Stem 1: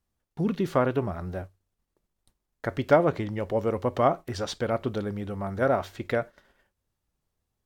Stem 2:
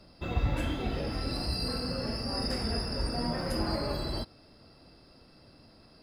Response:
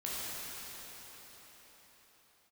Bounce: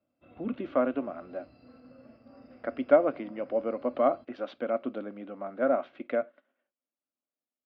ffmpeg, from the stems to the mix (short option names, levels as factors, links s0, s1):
-filter_complex "[0:a]highpass=f=210:w=0.5412,highpass=f=210:w=1.3066,volume=0.562[s0];[1:a]acompressor=threshold=0.00794:ratio=2,volume=0.224[s1];[s0][s1]amix=inputs=2:normalize=0,agate=range=0.398:threshold=0.00224:ratio=16:detection=peak,dynaudnorm=f=100:g=5:m=1.41,highpass=160,equalizer=f=180:t=q:w=4:g=-10,equalizer=f=260:t=q:w=4:g=6,equalizer=f=410:t=q:w=4:g=-10,equalizer=f=590:t=q:w=4:g=5,equalizer=f=910:t=q:w=4:g=-10,equalizer=f=1800:t=q:w=4:g=-9,lowpass=f=2600:w=0.5412,lowpass=f=2600:w=1.3066"